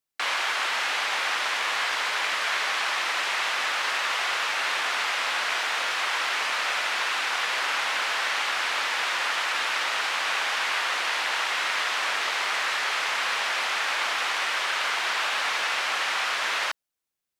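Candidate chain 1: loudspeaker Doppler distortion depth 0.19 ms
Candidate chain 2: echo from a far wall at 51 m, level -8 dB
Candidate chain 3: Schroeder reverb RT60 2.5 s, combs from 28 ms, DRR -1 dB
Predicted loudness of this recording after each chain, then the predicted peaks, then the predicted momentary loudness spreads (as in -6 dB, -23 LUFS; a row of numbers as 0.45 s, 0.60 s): -25.0 LUFS, -24.5 LUFS, -21.5 LUFS; -12.5 dBFS, -11.0 dBFS, -9.5 dBFS; 0 LU, 0 LU, 0 LU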